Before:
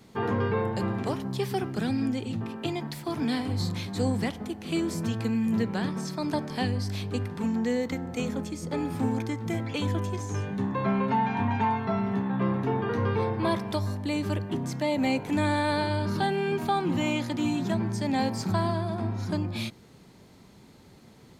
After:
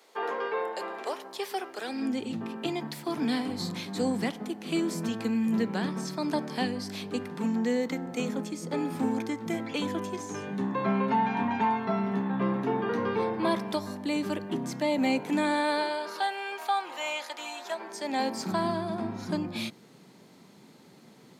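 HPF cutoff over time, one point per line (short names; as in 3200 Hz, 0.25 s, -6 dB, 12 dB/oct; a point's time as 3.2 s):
HPF 24 dB/oct
1.81 s 440 Hz
2.21 s 170 Hz
15.26 s 170 Hz
16.33 s 590 Hz
17.64 s 590 Hz
18.7 s 150 Hz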